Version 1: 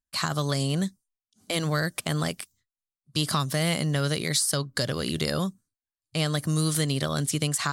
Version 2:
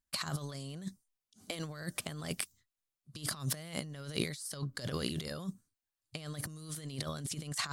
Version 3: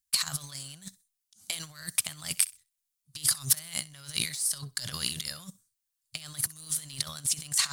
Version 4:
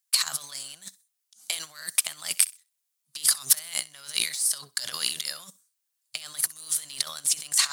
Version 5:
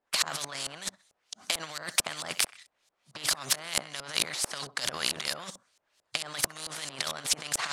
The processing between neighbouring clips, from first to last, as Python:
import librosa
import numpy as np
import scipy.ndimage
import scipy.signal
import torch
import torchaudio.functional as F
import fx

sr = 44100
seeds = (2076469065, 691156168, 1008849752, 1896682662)

y1 = fx.over_compress(x, sr, threshold_db=-32.0, ratio=-0.5)
y1 = y1 * librosa.db_to_amplitude(-5.5)
y2 = fx.curve_eq(y1, sr, hz=(130.0, 440.0, 740.0, 8900.0), db=(0, -14, -2, 15))
y2 = fx.leveller(y2, sr, passes=1)
y2 = fx.echo_thinned(y2, sr, ms=64, feedback_pct=24, hz=510.0, wet_db=-20)
y2 = y2 * librosa.db_to_amplitude(-4.0)
y3 = scipy.signal.sosfilt(scipy.signal.butter(2, 430.0, 'highpass', fs=sr, output='sos'), y2)
y3 = y3 * librosa.db_to_amplitude(4.0)
y4 = fx.filter_lfo_lowpass(y3, sr, shape='saw_up', hz=4.5, low_hz=600.0, high_hz=7000.0, q=0.93)
y4 = fx.peak_eq(y4, sr, hz=610.0, db=5.5, octaves=0.64)
y4 = fx.spectral_comp(y4, sr, ratio=2.0)
y4 = y4 * librosa.db_to_amplitude(2.0)